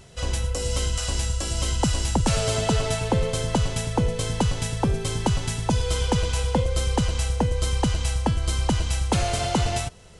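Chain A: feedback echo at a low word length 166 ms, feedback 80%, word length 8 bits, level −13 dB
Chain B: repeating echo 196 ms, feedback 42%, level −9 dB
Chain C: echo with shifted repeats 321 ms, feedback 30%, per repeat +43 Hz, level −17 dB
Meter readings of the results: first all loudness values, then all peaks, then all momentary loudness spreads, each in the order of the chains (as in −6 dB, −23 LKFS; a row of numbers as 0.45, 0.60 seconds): −24.5, −24.0, −24.5 LKFS; −11.0, −11.0, −11.0 dBFS; 3, 3, 3 LU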